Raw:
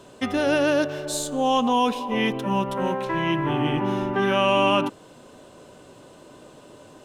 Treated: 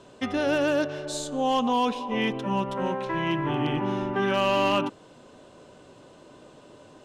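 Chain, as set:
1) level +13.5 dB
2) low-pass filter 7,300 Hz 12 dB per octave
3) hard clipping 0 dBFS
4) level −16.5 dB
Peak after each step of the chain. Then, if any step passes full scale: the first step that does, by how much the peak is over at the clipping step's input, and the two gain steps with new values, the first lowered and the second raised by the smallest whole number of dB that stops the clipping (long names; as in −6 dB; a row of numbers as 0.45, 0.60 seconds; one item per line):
+5.0, +5.0, 0.0, −16.5 dBFS
step 1, 5.0 dB
step 1 +8.5 dB, step 4 −11.5 dB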